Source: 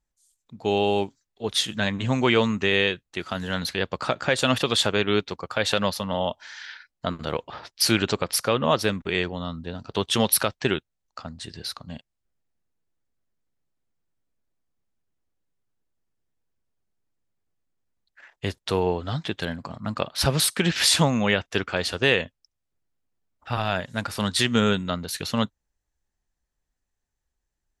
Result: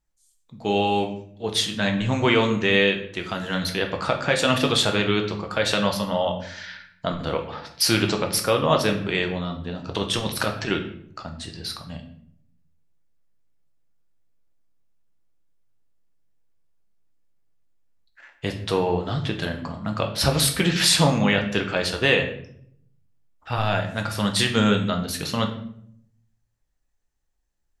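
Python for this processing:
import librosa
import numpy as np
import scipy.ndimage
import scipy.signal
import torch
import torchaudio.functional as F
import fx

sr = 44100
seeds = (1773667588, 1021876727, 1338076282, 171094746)

y = fx.over_compress(x, sr, threshold_db=-25.0, ratio=-0.5, at=(9.85, 10.69))
y = fx.room_shoebox(y, sr, seeds[0], volume_m3=120.0, walls='mixed', distance_m=0.6)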